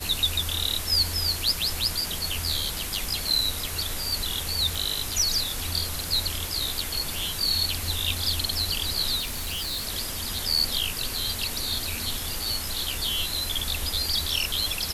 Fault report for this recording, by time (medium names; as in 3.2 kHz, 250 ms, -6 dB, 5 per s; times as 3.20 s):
4.75 s: pop
9.19–9.86 s: clipped -27 dBFS